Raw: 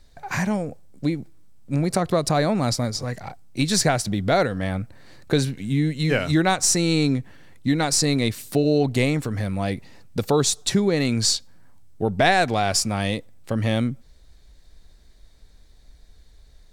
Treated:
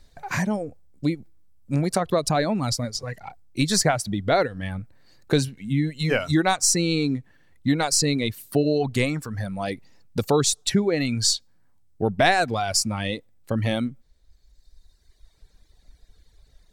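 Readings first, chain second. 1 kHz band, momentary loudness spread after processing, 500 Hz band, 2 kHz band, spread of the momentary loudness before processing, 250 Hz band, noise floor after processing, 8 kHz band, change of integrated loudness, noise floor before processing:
-1.0 dB, 12 LU, -1.5 dB, -1.0 dB, 11 LU, -2.0 dB, -60 dBFS, -0.5 dB, -1.5 dB, -51 dBFS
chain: reverb removal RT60 1.9 s

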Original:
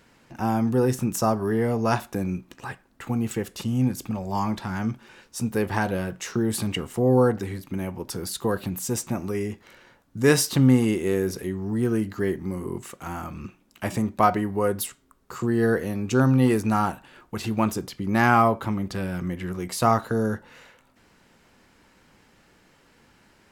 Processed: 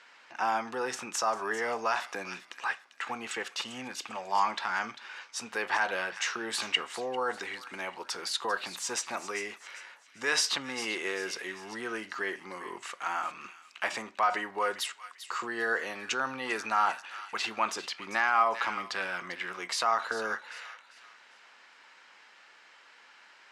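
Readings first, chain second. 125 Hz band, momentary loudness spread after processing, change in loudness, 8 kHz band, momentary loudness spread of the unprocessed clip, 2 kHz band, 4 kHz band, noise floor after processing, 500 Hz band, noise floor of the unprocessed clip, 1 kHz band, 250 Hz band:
-31.5 dB, 11 LU, -7.0 dB, -4.0 dB, 15 LU, +1.5 dB, +2.5 dB, -58 dBFS, -11.0 dB, -60 dBFS, -3.0 dB, -20.5 dB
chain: treble shelf 9.6 kHz -8.5 dB; feedback echo behind a high-pass 396 ms, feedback 35%, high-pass 2.3 kHz, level -11.5 dB; peak limiter -17 dBFS, peak gain reduction 11.5 dB; high-pass 1.1 kHz 12 dB/octave; distance through air 83 m; trim +7.5 dB

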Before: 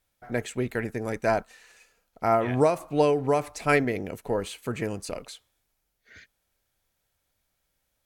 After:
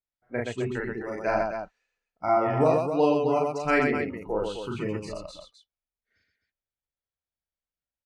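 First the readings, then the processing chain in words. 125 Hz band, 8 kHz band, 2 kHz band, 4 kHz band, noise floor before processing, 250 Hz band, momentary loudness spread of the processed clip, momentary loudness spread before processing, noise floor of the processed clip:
-1.5 dB, no reading, 0.0 dB, -2.0 dB, -77 dBFS, +0.5 dB, 13 LU, 10 LU, under -85 dBFS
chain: spectral noise reduction 21 dB; distance through air 100 m; loudspeakers at several distances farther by 13 m -1 dB, 42 m -3 dB, 89 m -7 dB; trim -2.5 dB

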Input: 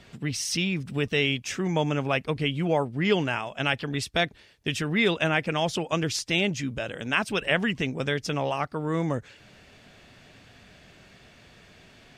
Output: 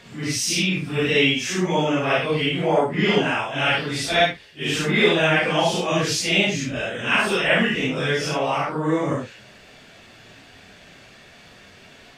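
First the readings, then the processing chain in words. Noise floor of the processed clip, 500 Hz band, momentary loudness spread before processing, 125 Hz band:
-48 dBFS, +6.5 dB, 6 LU, +2.5 dB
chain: phase randomisation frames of 200 ms; bass shelf 210 Hz -6.5 dB; trim +7 dB

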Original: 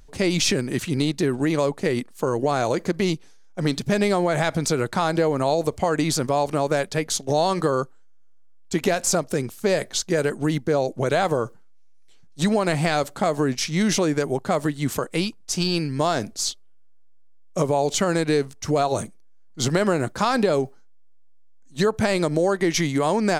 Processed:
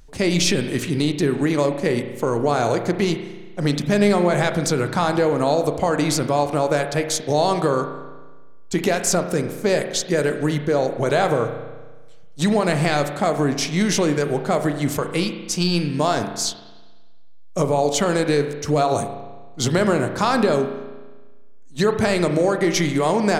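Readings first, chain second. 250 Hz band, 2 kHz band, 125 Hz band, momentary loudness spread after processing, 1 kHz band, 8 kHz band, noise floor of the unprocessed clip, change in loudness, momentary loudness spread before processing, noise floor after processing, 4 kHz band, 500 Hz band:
+2.5 dB, +2.5 dB, +2.5 dB, 6 LU, +2.5 dB, +1.5 dB, -46 dBFS, +2.5 dB, 6 LU, -36 dBFS, +1.5 dB, +2.5 dB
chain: spring tank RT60 1.3 s, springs 34 ms, chirp 70 ms, DRR 7 dB; trim +1.5 dB

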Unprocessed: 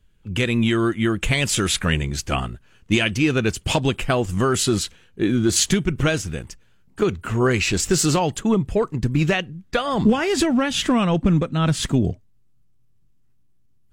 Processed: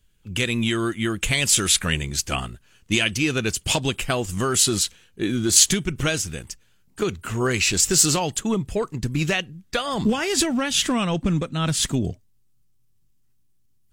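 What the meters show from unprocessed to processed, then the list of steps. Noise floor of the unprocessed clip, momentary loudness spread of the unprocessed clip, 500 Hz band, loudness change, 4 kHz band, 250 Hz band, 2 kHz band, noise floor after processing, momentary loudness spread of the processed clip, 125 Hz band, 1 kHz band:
-56 dBFS, 7 LU, -4.0 dB, -1.0 dB, +2.5 dB, -4.5 dB, -1.0 dB, -60 dBFS, 11 LU, -4.5 dB, -3.5 dB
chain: treble shelf 3.2 kHz +12 dB; trim -4.5 dB

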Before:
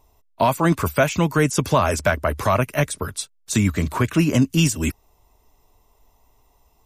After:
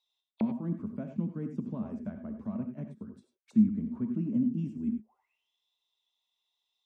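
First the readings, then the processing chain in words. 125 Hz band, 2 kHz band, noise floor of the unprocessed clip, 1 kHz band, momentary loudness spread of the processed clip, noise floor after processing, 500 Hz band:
-16.0 dB, under -35 dB, -61 dBFS, under -25 dB, 13 LU, -84 dBFS, -24.0 dB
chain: auto-wah 220–3900 Hz, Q 15, down, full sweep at -23.5 dBFS; gated-style reverb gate 120 ms rising, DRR 6.5 dB; trim +3.5 dB

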